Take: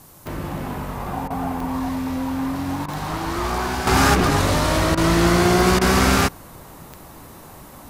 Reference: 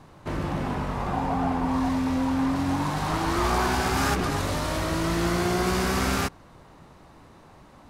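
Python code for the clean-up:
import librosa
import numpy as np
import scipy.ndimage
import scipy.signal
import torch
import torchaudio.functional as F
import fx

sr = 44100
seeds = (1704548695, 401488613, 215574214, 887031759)

y = fx.fix_declick_ar(x, sr, threshold=10.0)
y = fx.fix_interpolate(y, sr, at_s=(1.28, 2.86, 4.95, 5.79), length_ms=22.0)
y = fx.noise_reduce(y, sr, print_start_s=7.33, print_end_s=7.83, reduce_db=9.0)
y = fx.fix_level(y, sr, at_s=3.87, step_db=-8.5)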